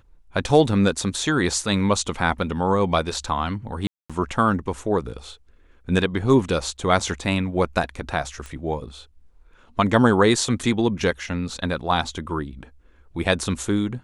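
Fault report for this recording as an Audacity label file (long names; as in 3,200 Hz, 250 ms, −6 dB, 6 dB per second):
3.870000	4.100000	drop-out 226 ms
8.460000	8.460000	click −22 dBFS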